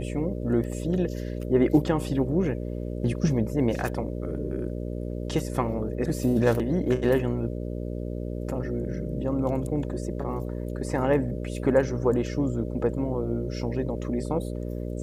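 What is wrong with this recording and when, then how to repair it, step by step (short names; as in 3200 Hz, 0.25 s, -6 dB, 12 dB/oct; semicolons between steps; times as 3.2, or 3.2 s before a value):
buzz 60 Hz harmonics 10 -32 dBFS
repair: de-hum 60 Hz, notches 10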